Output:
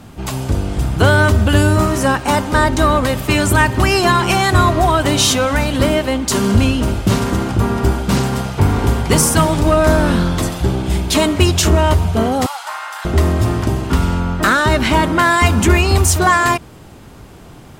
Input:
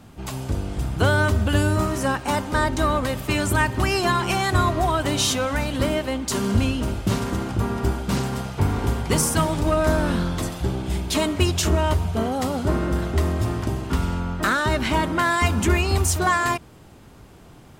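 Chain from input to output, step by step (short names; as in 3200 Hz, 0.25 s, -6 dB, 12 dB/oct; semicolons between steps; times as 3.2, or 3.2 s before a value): in parallel at -10.5 dB: sine folder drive 5 dB, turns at -5 dBFS; 12.46–13.05 on the sum: elliptic high-pass 830 Hz, stop band 80 dB; gain +3 dB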